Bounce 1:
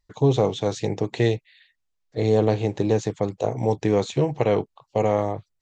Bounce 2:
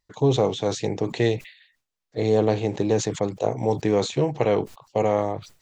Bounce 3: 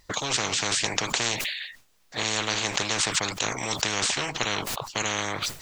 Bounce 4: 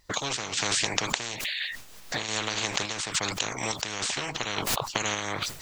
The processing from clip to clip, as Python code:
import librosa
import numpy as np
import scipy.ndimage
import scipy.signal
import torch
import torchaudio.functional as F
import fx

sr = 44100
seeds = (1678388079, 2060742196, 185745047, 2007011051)

y1 = fx.low_shelf(x, sr, hz=68.0, db=-12.0)
y1 = fx.sustainer(y1, sr, db_per_s=140.0)
y2 = fx.spectral_comp(y1, sr, ratio=10.0)
y2 = y2 * librosa.db_to_amplitude(2.0)
y3 = fx.recorder_agc(y2, sr, target_db=-12.0, rise_db_per_s=37.0, max_gain_db=30)
y3 = fx.tremolo_random(y3, sr, seeds[0], hz=3.5, depth_pct=55)
y3 = y3 * librosa.db_to_amplitude(-2.5)